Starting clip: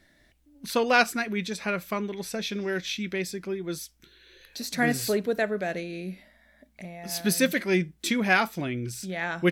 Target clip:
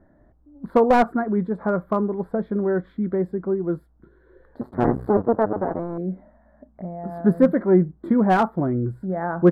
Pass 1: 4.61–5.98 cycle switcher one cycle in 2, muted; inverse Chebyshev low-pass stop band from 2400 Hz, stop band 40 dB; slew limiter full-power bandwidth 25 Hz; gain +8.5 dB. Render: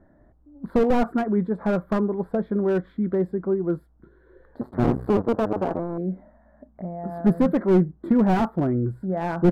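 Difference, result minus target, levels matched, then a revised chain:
slew limiter: distortion +12 dB
4.61–5.98 cycle switcher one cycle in 2, muted; inverse Chebyshev low-pass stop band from 2400 Hz, stop band 40 dB; slew limiter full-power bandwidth 73.5 Hz; gain +8.5 dB

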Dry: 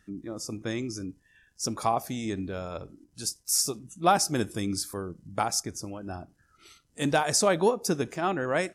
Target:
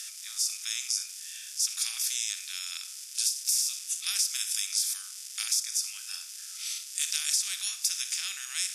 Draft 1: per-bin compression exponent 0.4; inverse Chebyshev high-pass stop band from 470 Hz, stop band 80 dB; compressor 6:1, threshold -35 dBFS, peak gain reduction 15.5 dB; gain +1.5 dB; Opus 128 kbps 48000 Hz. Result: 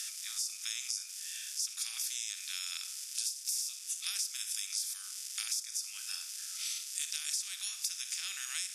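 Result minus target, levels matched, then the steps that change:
compressor: peak gain reduction +8.5 dB
change: compressor 6:1, threshold -25 dBFS, peak gain reduction 7 dB

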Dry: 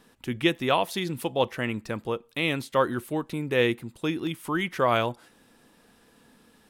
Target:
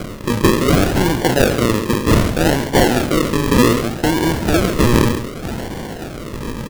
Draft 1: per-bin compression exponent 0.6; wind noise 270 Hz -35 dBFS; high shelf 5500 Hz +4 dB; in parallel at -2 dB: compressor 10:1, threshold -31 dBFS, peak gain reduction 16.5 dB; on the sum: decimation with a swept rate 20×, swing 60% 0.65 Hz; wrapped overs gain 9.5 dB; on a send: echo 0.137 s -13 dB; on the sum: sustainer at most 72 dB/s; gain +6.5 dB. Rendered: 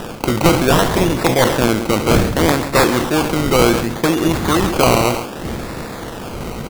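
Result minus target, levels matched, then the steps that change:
decimation with a swept rate: distortion -11 dB
change: decimation with a swept rate 48×, swing 60% 0.65 Hz

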